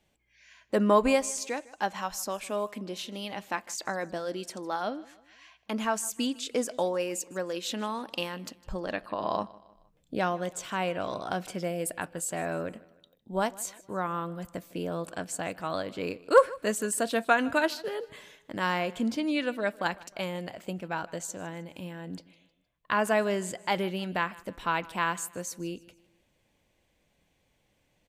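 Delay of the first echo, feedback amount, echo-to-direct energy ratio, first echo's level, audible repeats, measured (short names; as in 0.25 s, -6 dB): 0.155 s, 43%, -20.5 dB, -21.5 dB, 2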